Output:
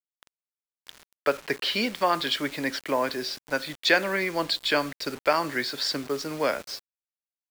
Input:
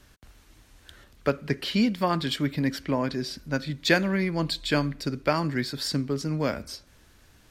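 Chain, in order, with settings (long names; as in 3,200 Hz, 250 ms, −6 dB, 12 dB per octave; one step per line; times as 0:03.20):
three-way crossover with the lows and the highs turned down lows −21 dB, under 370 Hz, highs −16 dB, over 6,300 Hz
in parallel at −1.5 dB: brickwall limiter −20.5 dBFS, peak gain reduction 10.5 dB
on the sum: bit reduction 7 bits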